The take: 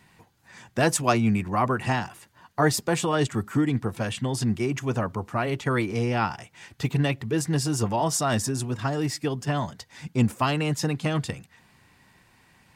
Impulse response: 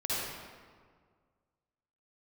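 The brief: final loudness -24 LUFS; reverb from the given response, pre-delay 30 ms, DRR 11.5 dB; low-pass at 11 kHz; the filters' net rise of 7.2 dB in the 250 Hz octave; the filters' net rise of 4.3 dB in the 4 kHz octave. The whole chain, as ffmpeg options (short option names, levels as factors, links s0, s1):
-filter_complex "[0:a]lowpass=11000,equalizer=f=250:t=o:g=9,equalizer=f=4000:t=o:g=6,asplit=2[s0][s1];[1:a]atrim=start_sample=2205,adelay=30[s2];[s1][s2]afir=irnorm=-1:irlink=0,volume=0.119[s3];[s0][s3]amix=inputs=2:normalize=0,volume=0.75"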